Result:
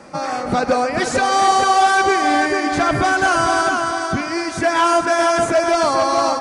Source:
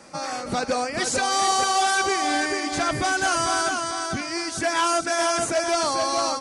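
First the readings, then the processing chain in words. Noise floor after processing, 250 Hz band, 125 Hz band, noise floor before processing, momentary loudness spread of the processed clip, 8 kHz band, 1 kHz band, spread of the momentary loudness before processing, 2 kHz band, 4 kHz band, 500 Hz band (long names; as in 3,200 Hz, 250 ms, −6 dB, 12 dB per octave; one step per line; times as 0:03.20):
−25 dBFS, +8.0 dB, +8.0 dB, −33 dBFS, 7 LU, −1.5 dB, +7.5 dB, 7 LU, +6.5 dB, +1.0 dB, +8.0 dB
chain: high-shelf EQ 3,100 Hz −11.5 dB
feedback echo with a band-pass in the loop 135 ms, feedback 70%, band-pass 1,300 Hz, level −9 dB
level +8 dB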